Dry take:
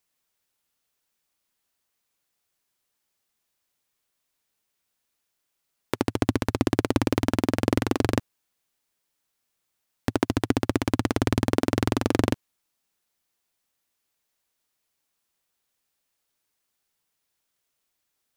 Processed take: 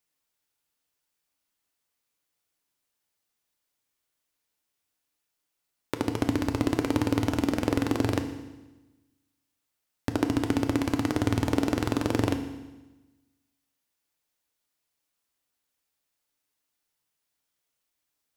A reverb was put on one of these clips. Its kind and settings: FDN reverb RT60 1.1 s, low-frequency decay 1.2×, high-frequency decay 1×, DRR 6 dB; gain -4 dB

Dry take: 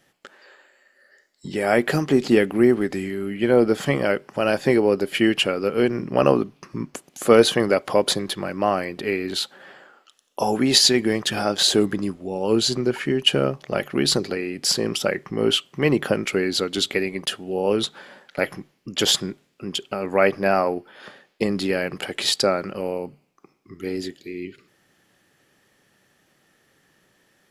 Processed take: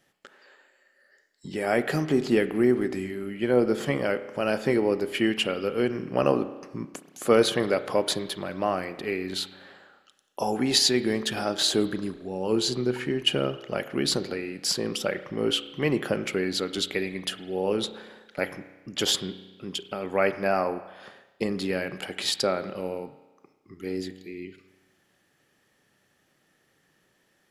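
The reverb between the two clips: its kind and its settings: spring tank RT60 1.2 s, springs 32 ms, chirp 25 ms, DRR 12 dB; gain -5.5 dB

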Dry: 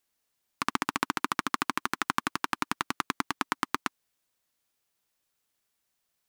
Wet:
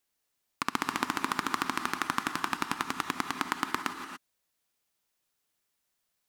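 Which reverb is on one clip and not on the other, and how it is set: non-linear reverb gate 0.31 s rising, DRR 6.5 dB; gain -1.5 dB

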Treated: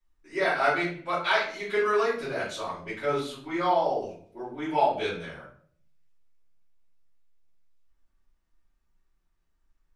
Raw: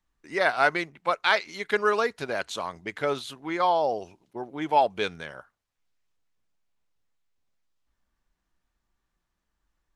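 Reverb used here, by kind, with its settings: shoebox room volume 61 m³, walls mixed, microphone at 2.9 m; gain -14 dB

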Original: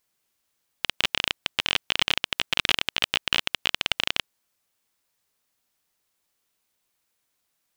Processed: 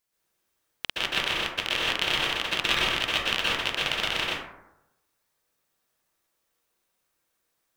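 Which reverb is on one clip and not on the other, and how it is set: plate-style reverb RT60 0.89 s, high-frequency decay 0.35×, pre-delay 0.11 s, DRR -7.5 dB; gain -6 dB

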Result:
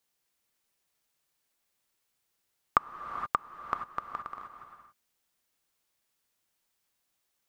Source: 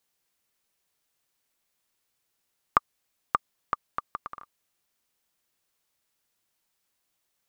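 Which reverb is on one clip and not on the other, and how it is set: non-linear reverb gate 0.5 s rising, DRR 7 dB; gain -2 dB

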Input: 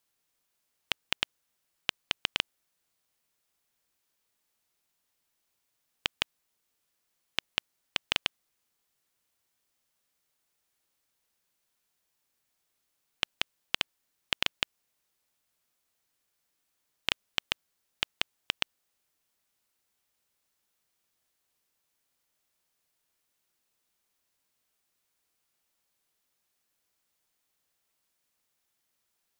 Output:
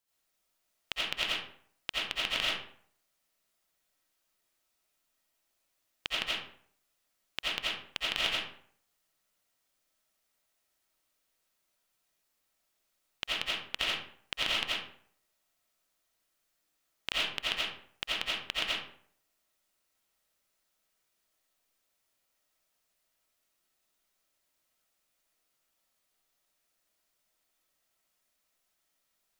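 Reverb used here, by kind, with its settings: digital reverb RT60 0.58 s, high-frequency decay 0.65×, pre-delay 45 ms, DRR -8 dB; gain -7 dB

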